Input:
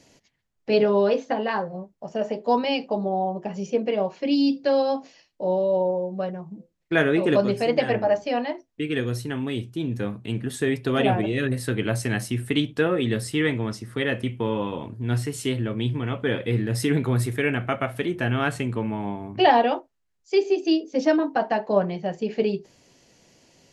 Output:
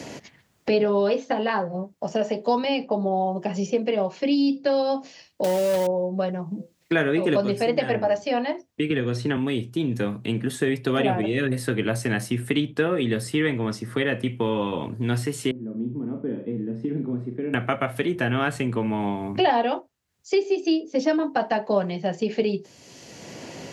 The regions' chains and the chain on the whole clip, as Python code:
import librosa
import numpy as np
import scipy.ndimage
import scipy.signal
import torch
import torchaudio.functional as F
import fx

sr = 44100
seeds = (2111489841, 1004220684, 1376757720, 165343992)

y = fx.chain(x, sr, fx.highpass(hz=86.0, slope=6),
    fx.quant_companded(bits=4), at=(5.44, 5.87))
y = fx.chain(y, sr, fx.air_absorb(metres=92.0),
    fx.band_squash(depth_pct=100), at=(8.9, 9.37))
y = fx.chain(y, sr, fx.ladder_bandpass(hz=260.0, resonance_pct=40),
    fx.room_flutter(wall_m=6.9, rt60_s=0.35), at=(15.51, 17.54))
y = scipy.signal.sosfilt(scipy.signal.butter(2, 94.0, 'highpass', fs=sr, output='sos'), y)
y = fx.band_squash(y, sr, depth_pct=70)